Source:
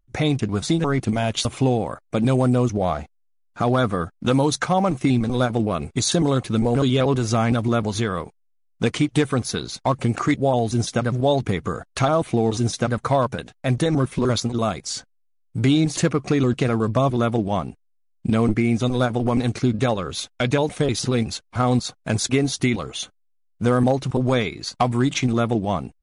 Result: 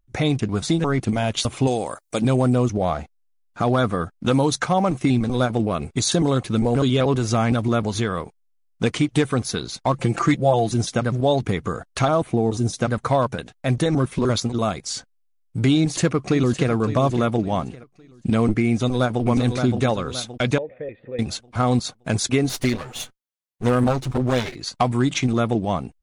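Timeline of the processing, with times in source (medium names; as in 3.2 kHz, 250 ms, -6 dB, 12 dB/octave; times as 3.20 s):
1.67–2.22 s: tone controls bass -8 dB, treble +14 dB
9.93–10.74 s: comb 5.9 ms, depth 69%
12.21–12.79 s: peaking EQ 5 kHz -> 1.7 kHz -8 dB 2.4 oct
15.75–16.71 s: echo throw 560 ms, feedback 35%, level -12 dB
18.69–19.23 s: echo throw 570 ms, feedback 40%, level -6 dB
20.58–21.19 s: cascade formant filter e
22.49–24.56 s: comb filter that takes the minimum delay 8 ms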